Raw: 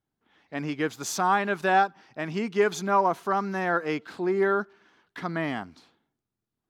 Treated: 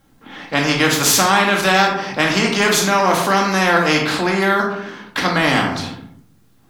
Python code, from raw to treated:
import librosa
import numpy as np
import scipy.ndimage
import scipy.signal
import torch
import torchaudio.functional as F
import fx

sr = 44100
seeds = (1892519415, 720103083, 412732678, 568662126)

p1 = fx.rider(x, sr, range_db=10, speed_s=0.5)
p2 = x + F.gain(torch.from_numpy(p1), -1.0).numpy()
p3 = fx.room_shoebox(p2, sr, seeds[0], volume_m3=470.0, walls='furnished', distance_m=2.2)
y = fx.spectral_comp(p3, sr, ratio=2.0)